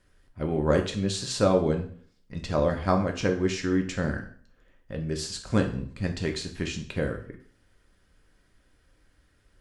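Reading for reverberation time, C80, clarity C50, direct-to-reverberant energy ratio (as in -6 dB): 0.50 s, 14.5 dB, 10.5 dB, 3.0 dB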